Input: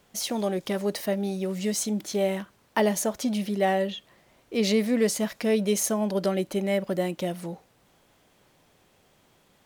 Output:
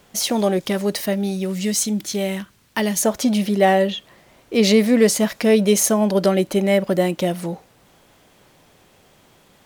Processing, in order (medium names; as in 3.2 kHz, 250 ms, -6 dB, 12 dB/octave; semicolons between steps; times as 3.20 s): 0.59–3.02 s: peaking EQ 630 Hz -3 dB -> -12 dB 2.4 oct; trim +8.5 dB